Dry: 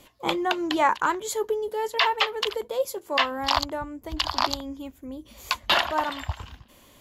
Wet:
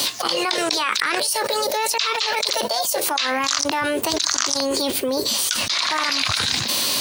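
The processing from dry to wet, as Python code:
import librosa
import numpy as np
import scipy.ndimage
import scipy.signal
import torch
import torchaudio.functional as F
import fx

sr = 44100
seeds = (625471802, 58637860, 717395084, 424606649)

p1 = scipy.signal.sosfilt(scipy.signal.butter(4, 99.0, 'highpass', fs=sr, output='sos'), x)
p2 = fx.high_shelf(p1, sr, hz=8300.0, db=8.0)
p3 = fx.level_steps(p2, sr, step_db=15)
p4 = p2 + (p3 * 10.0 ** (0.5 / 20.0))
p5 = fx.weighting(p4, sr, curve='D')
p6 = fx.formant_shift(p5, sr, semitones=5)
p7 = fx.env_flatten(p6, sr, amount_pct=100)
y = p7 * 10.0 ** (-16.0 / 20.0)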